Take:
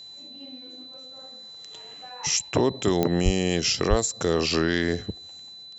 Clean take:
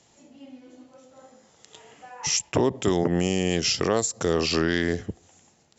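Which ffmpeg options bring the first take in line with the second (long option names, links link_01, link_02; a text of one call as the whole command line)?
ffmpeg -i in.wav -filter_complex "[0:a]adeclick=threshold=4,bandreject=frequency=4000:width=30,asplit=3[link_01][link_02][link_03];[link_01]afade=type=out:start_time=3.24:duration=0.02[link_04];[link_02]highpass=frequency=140:width=0.5412,highpass=frequency=140:width=1.3066,afade=type=in:start_time=3.24:duration=0.02,afade=type=out:start_time=3.36:duration=0.02[link_05];[link_03]afade=type=in:start_time=3.36:duration=0.02[link_06];[link_04][link_05][link_06]amix=inputs=3:normalize=0,asplit=3[link_07][link_08][link_09];[link_07]afade=type=out:start_time=3.89:duration=0.02[link_10];[link_08]highpass=frequency=140:width=0.5412,highpass=frequency=140:width=1.3066,afade=type=in:start_time=3.89:duration=0.02,afade=type=out:start_time=4.01:duration=0.02[link_11];[link_09]afade=type=in:start_time=4.01:duration=0.02[link_12];[link_10][link_11][link_12]amix=inputs=3:normalize=0" out.wav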